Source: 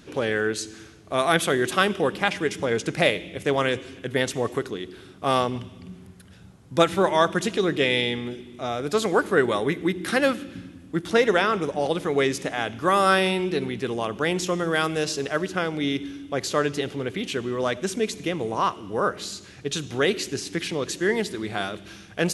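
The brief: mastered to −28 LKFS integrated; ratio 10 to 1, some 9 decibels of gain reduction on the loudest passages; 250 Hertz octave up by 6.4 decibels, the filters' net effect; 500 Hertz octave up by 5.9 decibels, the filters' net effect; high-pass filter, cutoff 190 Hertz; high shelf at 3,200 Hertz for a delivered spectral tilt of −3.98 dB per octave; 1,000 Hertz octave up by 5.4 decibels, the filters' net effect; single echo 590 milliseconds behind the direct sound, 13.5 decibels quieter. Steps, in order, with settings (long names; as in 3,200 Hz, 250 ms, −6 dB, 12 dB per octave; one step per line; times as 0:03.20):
high-pass filter 190 Hz
parametric band 250 Hz +8.5 dB
parametric band 500 Hz +3.5 dB
parametric band 1,000 Hz +6 dB
high-shelf EQ 3,200 Hz −4 dB
downward compressor 10 to 1, threshold −17 dBFS
single-tap delay 590 ms −13.5 dB
level −4 dB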